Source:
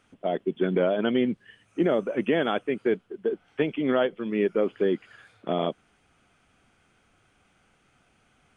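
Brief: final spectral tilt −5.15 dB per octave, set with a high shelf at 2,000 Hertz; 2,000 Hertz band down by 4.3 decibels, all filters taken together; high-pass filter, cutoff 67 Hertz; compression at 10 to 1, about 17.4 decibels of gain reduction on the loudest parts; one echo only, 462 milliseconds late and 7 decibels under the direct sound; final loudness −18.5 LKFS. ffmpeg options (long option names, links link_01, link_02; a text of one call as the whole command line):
ffmpeg -i in.wav -af "highpass=67,highshelf=frequency=2000:gain=5.5,equalizer=frequency=2000:width_type=o:gain=-9,acompressor=threshold=-37dB:ratio=10,aecho=1:1:462:0.447,volume=23.5dB" out.wav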